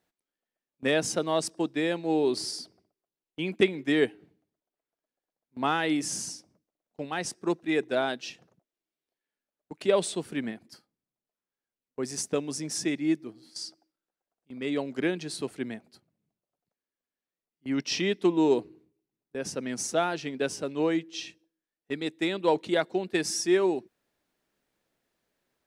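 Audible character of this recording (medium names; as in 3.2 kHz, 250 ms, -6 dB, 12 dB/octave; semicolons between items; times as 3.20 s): noise floor -93 dBFS; spectral tilt -4.0 dB/octave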